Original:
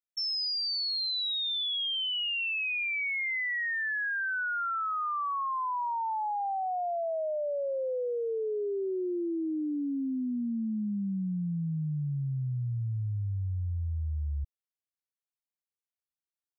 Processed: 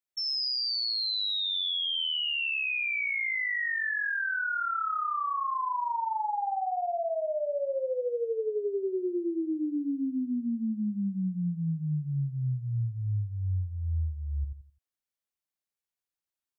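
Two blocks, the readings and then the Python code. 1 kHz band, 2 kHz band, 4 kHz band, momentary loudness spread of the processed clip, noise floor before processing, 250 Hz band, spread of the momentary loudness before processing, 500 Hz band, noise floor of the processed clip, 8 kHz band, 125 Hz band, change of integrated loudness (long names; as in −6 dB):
+1.0 dB, +1.0 dB, +1.0 dB, 5 LU, below −85 dBFS, +1.0 dB, 5 LU, +1.0 dB, below −85 dBFS, can't be measured, +1.0 dB, +1.0 dB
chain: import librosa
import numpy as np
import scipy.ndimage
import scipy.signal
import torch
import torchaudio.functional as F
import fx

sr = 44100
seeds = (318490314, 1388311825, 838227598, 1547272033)

y = x + fx.echo_feedback(x, sr, ms=85, feedback_pct=30, wet_db=-5.5, dry=0)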